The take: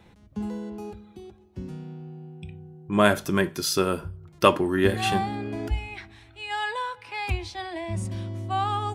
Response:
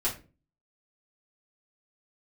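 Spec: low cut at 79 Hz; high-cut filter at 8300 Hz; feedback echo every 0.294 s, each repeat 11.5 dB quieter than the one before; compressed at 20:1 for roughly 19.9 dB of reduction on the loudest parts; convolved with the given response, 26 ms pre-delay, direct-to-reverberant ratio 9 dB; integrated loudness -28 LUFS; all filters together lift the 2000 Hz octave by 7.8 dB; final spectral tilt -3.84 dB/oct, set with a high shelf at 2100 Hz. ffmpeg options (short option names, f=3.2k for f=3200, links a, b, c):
-filter_complex "[0:a]highpass=79,lowpass=8.3k,equalizer=f=2k:t=o:g=5.5,highshelf=f=2.1k:g=8.5,acompressor=threshold=-28dB:ratio=20,aecho=1:1:294|588|882:0.266|0.0718|0.0194,asplit=2[a][b];[1:a]atrim=start_sample=2205,adelay=26[c];[b][c]afir=irnorm=-1:irlink=0,volume=-16dB[d];[a][d]amix=inputs=2:normalize=0,volume=5dB"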